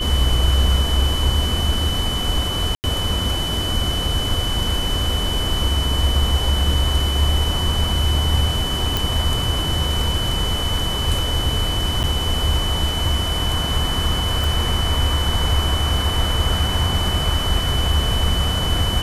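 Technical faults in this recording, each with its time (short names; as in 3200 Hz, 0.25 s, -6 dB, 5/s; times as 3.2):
tone 3000 Hz -24 dBFS
2.75–2.84 gap 89 ms
8.97 pop
12.03–12.04 gap 8.2 ms
14.44 pop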